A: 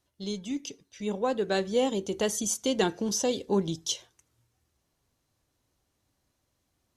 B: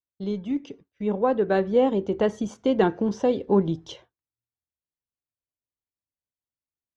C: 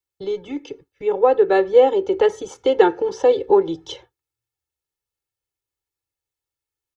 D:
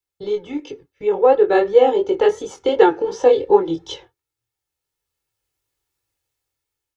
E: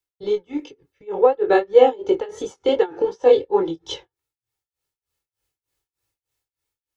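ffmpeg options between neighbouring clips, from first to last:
ffmpeg -i in.wav -af "lowpass=1600,agate=range=-33dB:threshold=-49dB:ratio=3:detection=peak,volume=6dB" out.wav
ffmpeg -i in.wav -filter_complex "[0:a]acrossover=split=300|390|1100[link_01][link_02][link_03][link_04];[link_01]acompressor=threshold=-39dB:ratio=6[link_05];[link_05][link_02][link_03][link_04]amix=inputs=4:normalize=0,aecho=1:1:2.3:0.95,volume=4dB" out.wav
ffmpeg -i in.wav -af "dynaudnorm=framelen=620:gausssize=5:maxgain=10.5dB,flanger=delay=19:depth=5.3:speed=2.8,volume=4dB" out.wav
ffmpeg -i in.wav -af "tremolo=f=3.3:d=0.95,volume=1.5dB" out.wav

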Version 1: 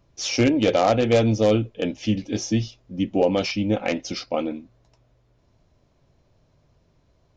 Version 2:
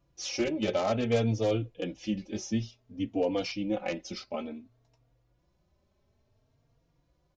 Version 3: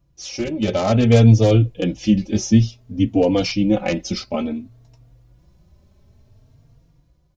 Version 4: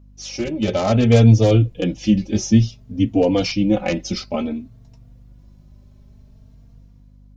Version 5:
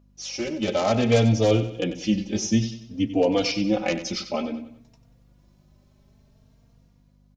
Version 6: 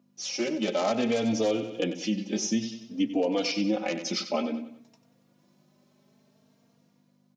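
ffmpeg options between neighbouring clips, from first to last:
ffmpeg -i in.wav -filter_complex "[0:a]asplit=2[link_01][link_02];[link_02]adelay=3.7,afreqshift=0.57[link_03];[link_01][link_03]amix=inputs=2:normalize=1,volume=-6dB" out.wav
ffmpeg -i in.wav -af "dynaudnorm=framelen=160:gausssize=9:maxgain=10dB,bass=frequency=250:gain=10,treble=frequency=4000:gain=4" out.wav
ffmpeg -i in.wav -af "aeval=exprs='val(0)+0.00501*(sin(2*PI*50*n/s)+sin(2*PI*2*50*n/s)/2+sin(2*PI*3*50*n/s)/3+sin(2*PI*4*50*n/s)/4+sin(2*PI*5*50*n/s)/5)':channel_layout=same" out.wav
ffmpeg -i in.wav -filter_complex "[0:a]lowshelf=frequency=210:gain=-11.5,asplit=2[link_01][link_02];[link_02]aecho=0:1:94|188|282|376:0.251|0.103|0.0422|0.0173[link_03];[link_01][link_03]amix=inputs=2:normalize=0,volume=-1.5dB" out.wav
ffmpeg -i in.wav -af "highpass=frequency=180:width=0.5412,highpass=frequency=180:width=1.3066,alimiter=limit=-17dB:level=0:latency=1:release=249" out.wav

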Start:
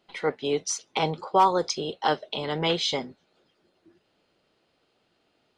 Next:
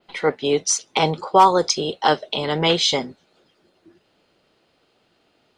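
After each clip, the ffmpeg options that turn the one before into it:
ffmpeg -i in.wav -af "adynamicequalizer=threshold=0.00794:dfrequency=8400:dqfactor=0.82:tfrequency=8400:tqfactor=0.82:attack=5:release=100:ratio=0.375:range=2.5:mode=boostabove:tftype=bell,volume=6.5dB" out.wav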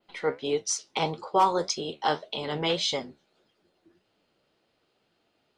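ffmpeg -i in.wav -af "flanger=delay=8.7:depth=6.3:regen=64:speed=1.7:shape=sinusoidal,volume=-4.5dB" out.wav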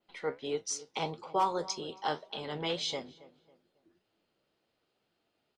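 ffmpeg -i in.wav -filter_complex "[0:a]asplit=2[link_01][link_02];[link_02]adelay=274,lowpass=frequency=1700:poles=1,volume=-18dB,asplit=2[link_03][link_04];[link_04]adelay=274,lowpass=frequency=1700:poles=1,volume=0.37,asplit=2[link_05][link_06];[link_06]adelay=274,lowpass=frequency=1700:poles=1,volume=0.37[link_07];[link_01][link_03][link_05][link_07]amix=inputs=4:normalize=0,volume=-7dB" out.wav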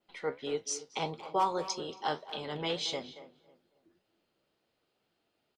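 ffmpeg -i in.wav -filter_complex "[0:a]asplit=2[link_01][link_02];[link_02]adelay=230,highpass=300,lowpass=3400,asoftclip=type=hard:threshold=-27dB,volume=-13dB[link_03];[link_01][link_03]amix=inputs=2:normalize=0" out.wav

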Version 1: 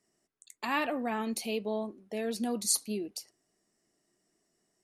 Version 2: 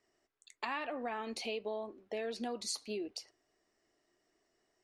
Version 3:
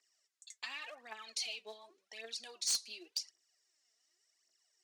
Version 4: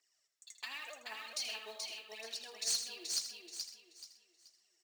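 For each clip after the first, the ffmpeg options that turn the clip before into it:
ffmpeg -i in.wav -af "lowpass=4300,equalizer=frequency=180:width_type=o:width=0.98:gain=-14.5,acompressor=threshold=-38dB:ratio=6,volume=3dB" out.wav
ffmpeg -i in.wav -af "aphaser=in_gain=1:out_gain=1:delay=4.7:decay=0.68:speed=0.89:type=triangular,bandpass=frequency=6400:width_type=q:width=1.2:csg=0,aeval=exprs='0.0266*(abs(mod(val(0)/0.0266+3,4)-2)-1)':channel_layout=same,volume=6dB" out.wav
ffmpeg -i in.wav -filter_complex "[0:a]asplit=2[link_01][link_02];[link_02]aecho=0:1:430|860|1290|1720:0.631|0.196|0.0606|0.0188[link_03];[link_01][link_03]amix=inputs=2:normalize=0,acrusher=bits=4:mode=log:mix=0:aa=0.000001,asplit=2[link_04][link_05];[link_05]aecho=0:1:80|128:0.299|0.168[link_06];[link_04][link_06]amix=inputs=2:normalize=0,volume=-1dB" out.wav

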